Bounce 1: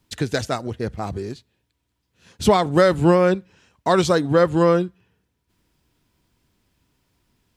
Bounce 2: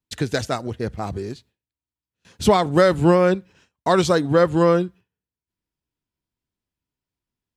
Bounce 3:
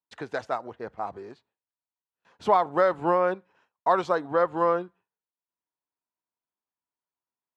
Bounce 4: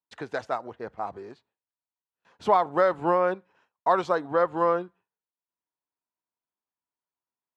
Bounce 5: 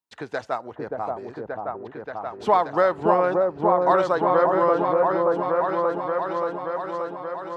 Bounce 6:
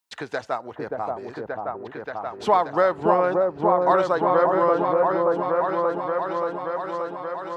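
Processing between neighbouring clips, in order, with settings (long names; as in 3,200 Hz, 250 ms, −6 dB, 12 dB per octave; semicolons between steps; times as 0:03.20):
noise gate with hold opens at −45 dBFS
resonant band-pass 930 Hz, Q 1.6
no processing that can be heard
echo whose low-pass opens from repeat to repeat 579 ms, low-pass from 750 Hz, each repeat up 1 octave, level 0 dB; level +2 dB
one half of a high-frequency compander encoder only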